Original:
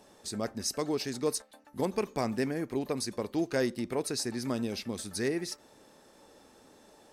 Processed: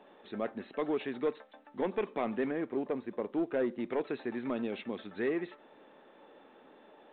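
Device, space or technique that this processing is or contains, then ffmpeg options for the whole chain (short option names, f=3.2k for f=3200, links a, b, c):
telephone: -filter_complex "[0:a]asettb=1/sr,asplit=3[a][b][c];[a]atrim=end=2.694[d];[b]atrim=start=2.69:end=3.8,asetpts=PTS-STARTPTS,afade=t=in:d=0.004:c=qsin,afade=t=out:st=1.106:d=0.004:c=qsin,lowpass=f=1.2k:p=1[e];[c]atrim=start=3.796[f];[d][e]acrossfade=d=0.004:c1=hsin:c2=qsin[g];[g][f]acrossfade=d=0.004:c1=qsin:c2=hsin,highpass=250,lowpass=3.2k,asoftclip=type=tanh:threshold=-24dB,volume=1.5dB" -ar 8000 -c:a pcm_mulaw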